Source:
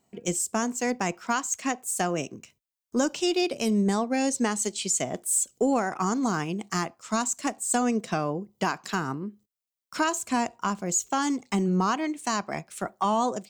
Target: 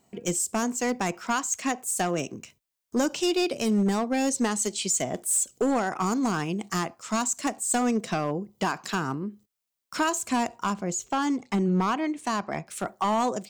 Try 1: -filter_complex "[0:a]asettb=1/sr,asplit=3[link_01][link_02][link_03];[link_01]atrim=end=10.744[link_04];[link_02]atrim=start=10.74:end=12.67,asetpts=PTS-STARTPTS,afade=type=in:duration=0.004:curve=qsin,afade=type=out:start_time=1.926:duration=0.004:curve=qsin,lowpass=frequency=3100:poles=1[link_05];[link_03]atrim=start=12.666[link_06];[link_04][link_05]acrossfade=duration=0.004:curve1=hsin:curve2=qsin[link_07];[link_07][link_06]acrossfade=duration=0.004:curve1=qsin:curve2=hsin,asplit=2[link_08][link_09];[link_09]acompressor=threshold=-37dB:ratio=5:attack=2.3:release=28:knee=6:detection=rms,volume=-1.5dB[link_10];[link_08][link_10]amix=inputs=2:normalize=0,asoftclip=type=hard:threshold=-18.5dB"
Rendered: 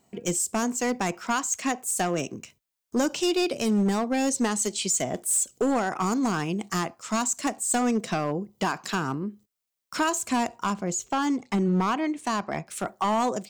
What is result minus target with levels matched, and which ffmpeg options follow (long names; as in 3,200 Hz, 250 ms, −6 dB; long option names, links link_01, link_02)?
downward compressor: peak gain reduction −5 dB
-filter_complex "[0:a]asettb=1/sr,asplit=3[link_01][link_02][link_03];[link_01]atrim=end=10.744[link_04];[link_02]atrim=start=10.74:end=12.67,asetpts=PTS-STARTPTS,afade=type=in:duration=0.004:curve=qsin,afade=type=out:start_time=1.926:duration=0.004:curve=qsin,lowpass=frequency=3100:poles=1[link_05];[link_03]atrim=start=12.666[link_06];[link_04][link_05]acrossfade=duration=0.004:curve1=hsin:curve2=qsin[link_07];[link_07][link_06]acrossfade=duration=0.004:curve1=qsin:curve2=hsin,asplit=2[link_08][link_09];[link_09]acompressor=threshold=-43.5dB:ratio=5:attack=2.3:release=28:knee=6:detection=rms,volume=-1.5dB[link_10];[link_08][link_10]amix=inputs=2:normalize=0,asoftclip=type=hard:threshold=-18.5dB"